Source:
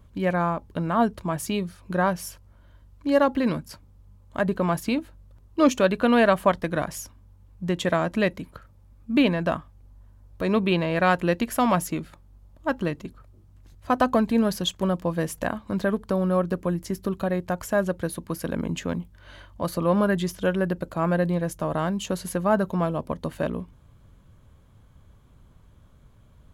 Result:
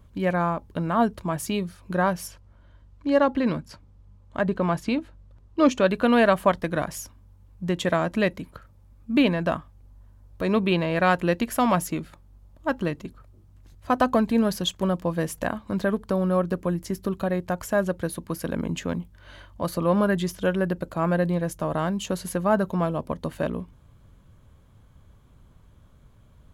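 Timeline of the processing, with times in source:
2.27–5.86 air absorption 57 m

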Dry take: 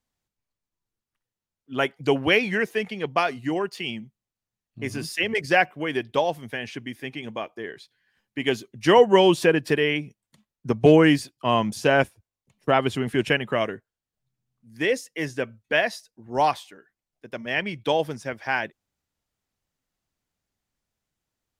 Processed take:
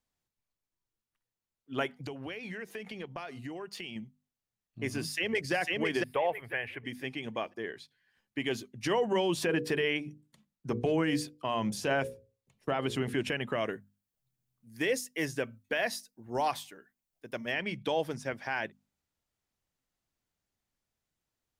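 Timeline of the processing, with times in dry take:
1.92–3.96 compressor 10:1, threshold -33 dBFS
5.01–5.53 echo throw 0.5 s, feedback 25%, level -3 dB
6.04–6.84 EQ curve 100 Hz 0 dB, 220 Hz -14 dB, 480 Hz 0 dB, 1400 Hz +1 dB, 2200 Hz +4 dB, 6100 Hz -25 dB, 11000 Hz -2 dB
9.35–13.19 notches 60/120/180/240/300/360/420/480/540 Hz
13.69–17.52 high shelf 9400 Hz +11.5 dB
whole clip: limiter -16.5 dBFS; notches 50/100/150/200/250 Hz; gain -3.5 dB

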